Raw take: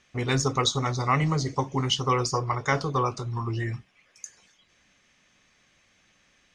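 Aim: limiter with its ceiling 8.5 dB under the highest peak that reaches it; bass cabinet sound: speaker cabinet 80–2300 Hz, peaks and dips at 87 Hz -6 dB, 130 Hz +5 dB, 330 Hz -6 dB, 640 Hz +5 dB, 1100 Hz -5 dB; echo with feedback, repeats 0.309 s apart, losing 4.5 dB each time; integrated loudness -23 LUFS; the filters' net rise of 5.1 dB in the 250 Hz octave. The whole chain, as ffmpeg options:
-af "equalizer=f=250:t=o:g=8,alimiter=limit=-18dB:level=0:latency=1,highpass=f=80:w=0.5412,highpass=f=80:w=1.3066,equalizer=f=87:t=q:w=4:g=-6,equalizer=f=130:t=q:w=4:g=5,equalizer=f=330:t=q:w=4:g=-6,equalizer=f=640:t=q:w=4:g=5,equalizer=f=1.1k:t=q:w=4:g=-5,lowpass=f=2.3k:w=0.5412,lowpass=f=2.3k:w=1.3066,aecho=1:1:309|618|927|1236|1545|1854|2163|2472|2781:0.596|0.357|0.214|0.129|0.0772|0.0463|0.0278|0.0167|0.01,volume=3dB"

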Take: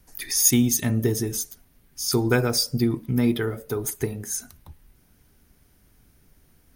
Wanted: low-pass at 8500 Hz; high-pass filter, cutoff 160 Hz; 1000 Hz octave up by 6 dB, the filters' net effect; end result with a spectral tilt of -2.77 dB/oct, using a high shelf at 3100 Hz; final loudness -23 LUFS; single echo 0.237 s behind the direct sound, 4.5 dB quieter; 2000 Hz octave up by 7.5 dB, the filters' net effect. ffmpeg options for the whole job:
-af "highpass=160,lowpass=8.5k,equalizer=f=1k:t=o:g=5.5,equalizer=f=2k:t=o:g=7,highshelf=f=3.1k:g=3,aecho=1:1:237:0.596,volume=-1.5dB"

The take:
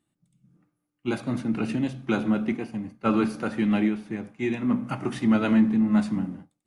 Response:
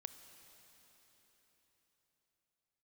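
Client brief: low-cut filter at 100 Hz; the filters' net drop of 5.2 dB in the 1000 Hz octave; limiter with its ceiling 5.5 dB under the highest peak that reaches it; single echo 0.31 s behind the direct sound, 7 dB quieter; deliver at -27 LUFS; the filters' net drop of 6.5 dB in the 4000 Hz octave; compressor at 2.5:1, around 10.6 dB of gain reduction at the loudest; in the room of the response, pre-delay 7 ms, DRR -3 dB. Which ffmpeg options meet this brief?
-filter_complex "[0:a]highpass=100,equalizer=f=1k:t=o:g=-7,equalizer=f=4k:t=o:g=-8.5,acompressor=threshold=-33dB:ratio=2.5,alimiter=level_in=2.5dB:limit=-24dB:level=0:latency=1,volume=-2.5dB,aecho=1:1:310:0.447,asplit=2[a][b];[1:a]atrim=start_sample=2205,adelay=7[c];[b][c]afir=irnorm=-1:irlink=0,volume=7.5dB[d];[a][d]amix=inputs=2:normalize=0,volume=6.5dB"

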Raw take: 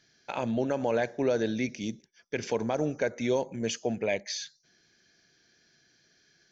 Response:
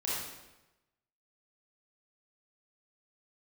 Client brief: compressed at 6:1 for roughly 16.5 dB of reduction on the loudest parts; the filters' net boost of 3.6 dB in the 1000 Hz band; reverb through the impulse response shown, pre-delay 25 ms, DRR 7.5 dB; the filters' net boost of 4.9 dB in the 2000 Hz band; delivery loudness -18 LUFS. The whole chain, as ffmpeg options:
-filter_complex "[0:a]equalizer=f=1k:t=o:g=4,equalizer=f=2k:t=o:g=5,acompressor=threshold=-40dB:ratio=6,asplit=2[a][b];[1:a]atrim=start_sample=2205,adelay=25[c];[b][c]afir=irnorm=-1:irlink=0,volume=-13dB[d];[a][d]amix=inputs=2:normalize=0,volume=25dB"

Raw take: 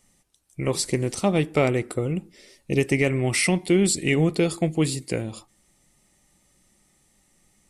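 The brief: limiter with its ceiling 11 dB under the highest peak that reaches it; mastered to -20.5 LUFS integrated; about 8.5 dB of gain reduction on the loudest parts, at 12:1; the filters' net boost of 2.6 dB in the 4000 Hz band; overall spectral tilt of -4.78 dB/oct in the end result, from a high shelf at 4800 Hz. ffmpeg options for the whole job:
-af "equalizer=f=4k:t=o:g=5.5,highshelf=f=4.8k:g=-4,acompressor=threshold=-24dB:ratio=12,volume=13.5dB,alimiter=limit=-11dB:level=0:latency=1"

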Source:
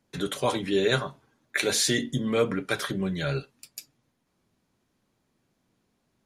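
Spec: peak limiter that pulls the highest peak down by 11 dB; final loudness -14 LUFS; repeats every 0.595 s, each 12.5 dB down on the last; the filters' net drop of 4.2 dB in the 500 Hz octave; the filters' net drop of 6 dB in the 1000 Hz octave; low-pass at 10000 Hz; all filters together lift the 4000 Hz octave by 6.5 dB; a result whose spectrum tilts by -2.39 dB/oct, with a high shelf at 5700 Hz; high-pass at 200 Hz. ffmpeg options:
-af "highpass=200,lowpass=10k,equalizer=f=500:t=o:g=-3.5,equalizer=f=1k:t=o:g=-8,equalizer=f=4k:t=o:g=5,highshelf=f=5.7k:g=8.5,alimiter=limit=-15.5dB:level=0:latency=1,aecho=1:1:595|1190|1785:0.237|0.0569|0.0137,volume=14.5dB"

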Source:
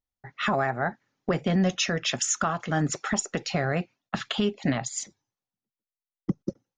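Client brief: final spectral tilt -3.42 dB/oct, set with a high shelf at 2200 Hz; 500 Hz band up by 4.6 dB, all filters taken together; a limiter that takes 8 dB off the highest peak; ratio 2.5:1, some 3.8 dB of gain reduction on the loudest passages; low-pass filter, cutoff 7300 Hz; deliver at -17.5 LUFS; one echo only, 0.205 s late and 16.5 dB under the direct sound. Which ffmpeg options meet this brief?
-af "lowpass=7.3k,equalizer=f=500:t=o:g=5.5,highshelf=f=2.2k:g=7,acompressor=threshold=-23dB:ratio=2.5,alimiter=limit=-19dB:level=0:latency=1,aecho=1:1:205:0.15,volume=13dB"

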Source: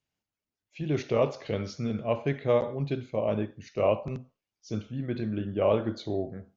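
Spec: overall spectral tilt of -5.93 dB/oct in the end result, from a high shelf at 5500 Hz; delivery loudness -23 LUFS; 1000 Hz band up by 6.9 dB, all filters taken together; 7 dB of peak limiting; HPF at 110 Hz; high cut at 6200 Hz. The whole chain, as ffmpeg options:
-af "highpass=110,lowpass=6.2k,equalizer=f=1k:t=o:g=8.5,highshelf=f=5.5k:g=9,volume=7.5dB,alimiter=limit=-8.5dB:level=0:latency=1"

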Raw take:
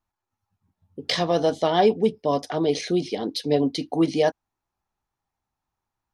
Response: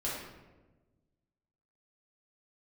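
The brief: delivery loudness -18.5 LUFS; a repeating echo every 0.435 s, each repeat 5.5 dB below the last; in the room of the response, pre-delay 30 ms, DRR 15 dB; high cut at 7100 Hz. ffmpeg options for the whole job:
-filter_complex "[0:a]lowpass=7.1k,aecho=1:1:435|870|1305|1740|2175|2610|3045:0.531|0.281|0.149|0.079|0.0419|0.0222|0.0118,asplit=2[a][b];[1:a]atrim=start_sample=2205,adelay=30[c];[b][c]afir=irnorm=-1:irlink=0,volume=-20dB[d];[a][d]amix=inputs=2:normalize=0,volume=4dB"

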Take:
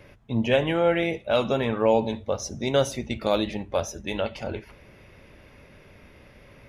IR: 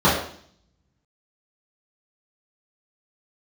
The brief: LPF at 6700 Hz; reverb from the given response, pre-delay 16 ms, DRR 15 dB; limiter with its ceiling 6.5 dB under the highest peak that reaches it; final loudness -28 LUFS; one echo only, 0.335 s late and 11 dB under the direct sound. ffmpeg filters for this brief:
-filter_complex "[0:a]lowpass=6.7k,alimiter=limit=-15dB:level=0:latency=1,aecho=1:1:335:0.282,asplit=2[a][b];[1:a]atrim=start_sample=2205,adelay=16[c];[b][c]afir=irnorm=-1:irlink=0,volume=-37.5dB[d];[a][d]amix=inputs=2:normalize=0,volume=-1dB"

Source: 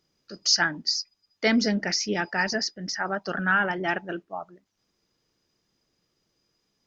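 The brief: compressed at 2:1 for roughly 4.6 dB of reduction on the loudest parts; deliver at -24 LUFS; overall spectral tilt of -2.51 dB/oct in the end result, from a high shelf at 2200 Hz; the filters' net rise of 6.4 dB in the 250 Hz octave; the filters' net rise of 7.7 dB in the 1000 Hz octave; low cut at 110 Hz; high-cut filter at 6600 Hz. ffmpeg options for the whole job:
-af "highpass=110,lowpass=6.6k,equalizer=f=250:t=o:g=7.5,equalizer=f=1k:t=o:g=8,highshelf=f=2.2k:g=9,acompressor=threshold=-19dB:ratio=2,volume=-1.5dB"

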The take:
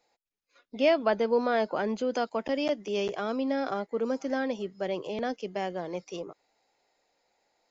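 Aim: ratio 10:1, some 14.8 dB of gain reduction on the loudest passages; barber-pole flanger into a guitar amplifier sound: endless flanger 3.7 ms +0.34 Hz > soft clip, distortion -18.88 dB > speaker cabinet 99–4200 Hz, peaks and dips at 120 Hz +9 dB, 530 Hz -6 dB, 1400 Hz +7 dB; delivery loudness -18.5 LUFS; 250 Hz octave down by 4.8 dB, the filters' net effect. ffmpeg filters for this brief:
-filter_complex "[0:a]equalizer=f=250:t=o:g=-5.5,acompressor=threshold=-35dB:ratio=10,asplit=2[a][b];[b]adelay=3.7,afreqshift=0.34[c];[a][c]amix=inputs=2:normalize=1,asoftclip=threshold=-34dB,highpass=99,equalizer=f=120:t=q:w=4:g=9,equalizer=f=530:t=q:w=4:g=-6,equalizer=f=1.4k:t=q:w=4:g=7,lowpass=f=4.2k:w=0.5412,lowpass=f=4.2k:w=1.3066,volume=27.5dB"

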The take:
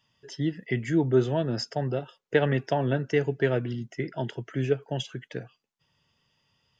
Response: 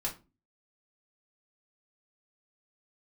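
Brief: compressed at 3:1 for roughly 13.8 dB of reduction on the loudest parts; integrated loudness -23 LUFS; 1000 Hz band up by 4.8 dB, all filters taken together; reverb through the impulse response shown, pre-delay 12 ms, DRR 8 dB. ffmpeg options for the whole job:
-filter_complex "[0:a]equalizer=f=1k:t=o:g=7,acompressor=threshold=-35dB:ratio=3,asplit=2[a][b];[1:a]atrim=start_sample=2205,adelay=12[c];[b][c]afir=irnorm=-1:irlink=0,volume=-11dB[d];[a][d]amix=inputs=2:normalize=0,volume=14dB"

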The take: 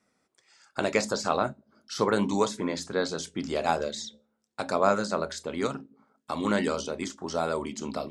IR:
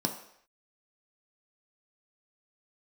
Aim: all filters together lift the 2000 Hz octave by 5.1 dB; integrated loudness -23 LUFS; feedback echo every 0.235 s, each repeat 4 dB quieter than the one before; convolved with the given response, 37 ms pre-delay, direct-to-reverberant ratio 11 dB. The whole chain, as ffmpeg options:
-filter_complex "[0:a]equalizer=f=2k:t=o:g=7,aecho=1:1:235|470|705|940|1175|1410|1645|1880|2115:0.631|0.398|0.25|0.158|0.0994|0.0626|0.0394|0.0249|0.0157,asplit=2[a][b];[1:a]atrim=start_sample=2205,adelay=37[c];[b][c]afir=irnorm=-1:irlink=0,volume=-16.5dB[d];[a][d]amix=inputs=2:normalize=0,volume=2dB"

